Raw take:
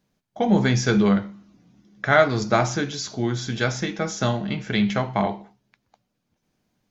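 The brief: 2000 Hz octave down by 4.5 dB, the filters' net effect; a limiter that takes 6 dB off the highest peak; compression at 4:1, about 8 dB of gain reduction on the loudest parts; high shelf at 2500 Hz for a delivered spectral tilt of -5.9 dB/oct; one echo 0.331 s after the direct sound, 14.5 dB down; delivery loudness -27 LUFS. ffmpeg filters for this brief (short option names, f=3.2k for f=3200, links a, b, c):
-af "equalizer=f=2k:t=o:g=-4.5,highshelf=f=2.5k:g=-4.5,acompressor=threshold=-22dB:ratio=4,alimiter=limit=-17.5dB:level=0:latency=1,aecho=1:1:331:0.188,volume=2dB"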